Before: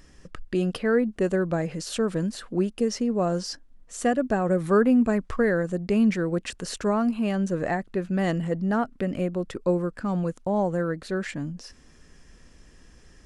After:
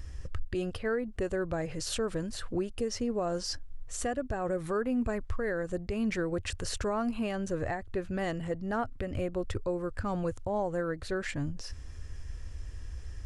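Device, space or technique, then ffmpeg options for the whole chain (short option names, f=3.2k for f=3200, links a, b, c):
car stereo with a boomy subwoofer: -af "lowshelf=f=130:t=q:w=3:g=11.5,alimiter=limit=-23dB:level=0:latency=1:release=378"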